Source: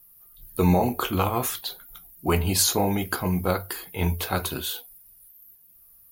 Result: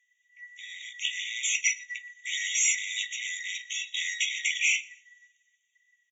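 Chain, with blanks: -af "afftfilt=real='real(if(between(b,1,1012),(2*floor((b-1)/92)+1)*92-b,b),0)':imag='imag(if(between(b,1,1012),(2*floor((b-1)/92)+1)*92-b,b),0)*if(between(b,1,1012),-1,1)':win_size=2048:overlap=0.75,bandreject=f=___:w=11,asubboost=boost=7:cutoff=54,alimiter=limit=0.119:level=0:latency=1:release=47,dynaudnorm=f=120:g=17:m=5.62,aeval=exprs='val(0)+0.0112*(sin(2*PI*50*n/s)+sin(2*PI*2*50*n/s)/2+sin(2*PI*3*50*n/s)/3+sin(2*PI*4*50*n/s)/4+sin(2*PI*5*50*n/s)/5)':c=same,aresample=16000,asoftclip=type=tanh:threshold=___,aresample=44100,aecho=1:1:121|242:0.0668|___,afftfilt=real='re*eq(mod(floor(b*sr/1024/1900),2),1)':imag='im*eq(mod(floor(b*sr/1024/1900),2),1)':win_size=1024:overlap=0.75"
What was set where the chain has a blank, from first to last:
5100, 0.133, 0.0227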